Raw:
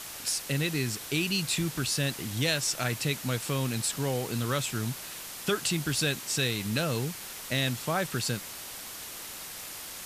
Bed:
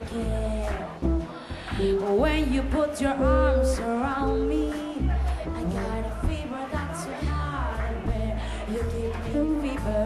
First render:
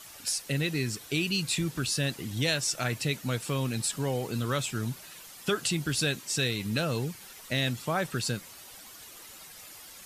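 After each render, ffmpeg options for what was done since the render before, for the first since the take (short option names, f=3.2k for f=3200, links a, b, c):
-af "afftdn=nr=10:nf=-42"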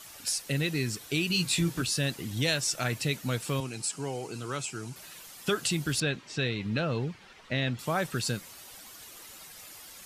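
-filter_complex "[0:a]asettb=1/sr,asplit=3[a][b][c];[a]atrim=end=1.284[d];[b]atrim=start=1.28:end=1.82,asetpts=PTS-STARTPTS,afade=t=in:d=0.004:c=qsin,afade=t=out:st=0.536:d=0.004:c=qsin,asplit=2[e][f];[f]adelay=17,volume=-3dB[g];[e][g]amix=inputs=2:normalize=0,atrim=end_sample=23814[h];[c]atrim=start=1.816[i];[d][h]acrossfade=d=0.004:c1=hsin:c2=qsin[j];[j][i]acrossfade=d=0.004:c1=qsin:c2=hsin,asettb=1/sr,asplit=3[k][l][m];[k]atrim=end=3.604[n];[l]atrim=start=3.6:end=4.96,asetpts=PTS-STARTPTS,afade=t=in:d=0.004:c=qsin,afade=t=out:st=1.356:d=0.004:c=qsin,highpass=180,equalizer=f=230:t=q:w=4:g=-9,equalizer=f=550:t=q:w=4:g=-8,equalizer=f=1.1k:t=q:w=4:g=-4,equalizer=f=1.8k:t=q:w=4:g=-8,equalizer=f=3.6k:t=q:w=4:g=-10,lowpass=f=9.7k:w=0.5412,lowpass=f=9.7k:w=1.3066[o];[m]atrim=start=4.956[p];[n][o]acrossfade=d=0.004:c1=hsin:c2=qsin[q];[q][p]acrossfade=d=0.004:c1=qsin:c2=hsin,asettb=1/sr,asplit=3[r][s][t];[r]atrim=end=6.004[u];[s]atrim=start=6:end=7.79,asetpts=PTS-STARTPTS,afade=t=in:d=0.004:c=qsin,afade=t=out:st=1.786:d=0.004:c=qsin,lowpass=3.2k[v];[t]atrim=start=7.786[w];[u][v]acrossfade=d=0.004:c1=hsin:c2=qsin[x];[x][w]acrossfade=d=0.004:c1=qsin:c2=hsin"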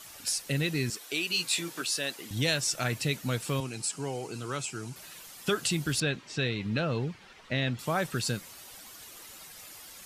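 -filter_complex "[0:a]asettb=1/sr,asplit=3[a][b][c];[a]atrim=end=0.904[d];[b]atrim=start=0.9:end=2.31,asetpts=PTS-STARTPTS,afade=t=in:d=0.004:c=qsin,afade=t=out:st=1.406:d=0.004:c=qsin,highpass=410[e];[c]atrim=start=2.306[f];[d][e]acrossfade=d=0.004:c1=hsin:c2=qsin[g];[g][f]acrossfade=d=0.004:c1=qsin:c2=hsin"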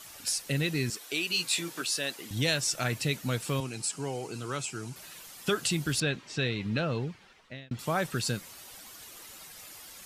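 -filter_complex "[0:a]asplit=2[a][b];[a]atrim=end=7.71,asetpts=PTS-STARTPTS,afade=t=out:st=6.64:d=1.07:c=qsin[c];[b]atrim=start=7.71,asetpts=PTS-STARTPTS,afade=t=in:d=0.004:c=hsin[d];[c][d]concat=n=2:v=0:a=1"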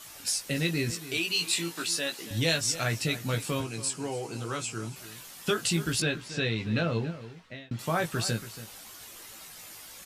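-filter_complex "[0:a]asplit=2[a][b];[b]adelay=18,volume=-5dB[c];[a][c]amix=inputs=2:normalize=0,asplit=2[d][e];[e]adelay=279.9,volume=-14dB,highshelf=f=4k:g=-6.3[f];[d][f]amix=inputs=2:normalize=0"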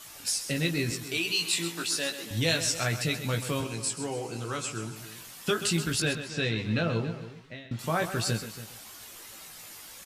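-af "aecho=1:1:130:0.282"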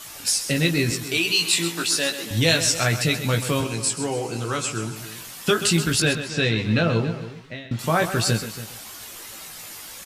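-af "volume=7.5dB"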